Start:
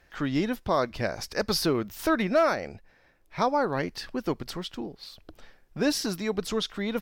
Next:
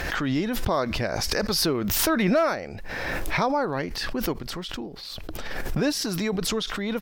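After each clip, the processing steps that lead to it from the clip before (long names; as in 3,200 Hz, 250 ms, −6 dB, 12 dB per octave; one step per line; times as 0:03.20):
background raised ahead of every attack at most 21 dB per second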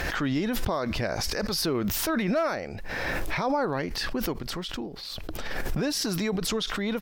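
brickwall limiter −18.5 dBFS, peak gain reduction 7.5 dB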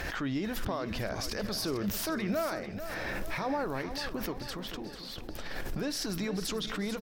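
repeating echo 443 ms, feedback 53%, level −10.5 dB
on a send at −19.5 dB: convolution reverb RT60 0.60 s, pre-delay 3 ms
on the sum: level −6.5 dB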